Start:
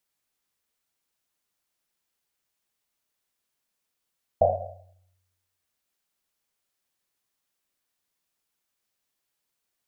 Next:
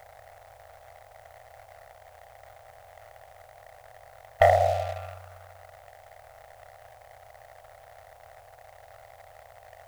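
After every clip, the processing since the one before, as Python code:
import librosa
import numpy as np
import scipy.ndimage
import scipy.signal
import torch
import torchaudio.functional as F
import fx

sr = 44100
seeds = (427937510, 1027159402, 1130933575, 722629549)

y = fx.bin_compress(x, sr, power=0.4)
y = fx.leveller(y, sr, passes=1)
y = fx.curve_eq(y, sr, hz=(120.0, 190.0, 790.0, 1500.0), db=(0, -26, 3, 12))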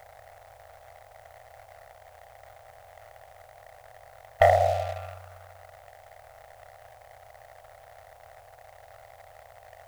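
y = x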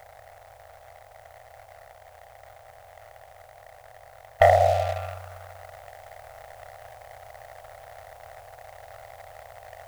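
y = fx.rider(x, sr, range_db=10, speed_s=0.5)
y = y * librosa.db_to_amplitude(5.5)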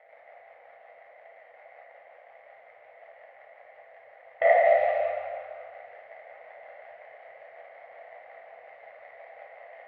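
y = fx.rotary(x, sr, hz=5.5)
y = fx.cabinet(y, sr, low_hz=230.0, low_slope=24, high_hz=2700.0, hz=(310.0, 510.0, 1400.0, 2100.0), db=(-4, 4, -5, 9))
y = fx.rev_plate(y, sr, seeds[0], rt60_s=2.1, hf_ratio=0.8, predelay_ms=0, drr_db=-5.0)
y = y * librosa.db_to_amplitude(-7.0)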